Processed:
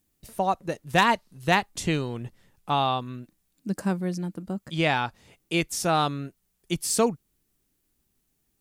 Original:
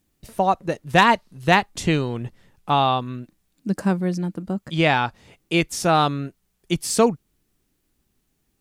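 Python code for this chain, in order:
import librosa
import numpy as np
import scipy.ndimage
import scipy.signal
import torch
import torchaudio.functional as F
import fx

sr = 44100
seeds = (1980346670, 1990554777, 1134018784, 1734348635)

y = fx.high_shelf(x, sr, hz=6600.0, db=7.5)
y = y * 10.0 ** (-5.5 / 20.0)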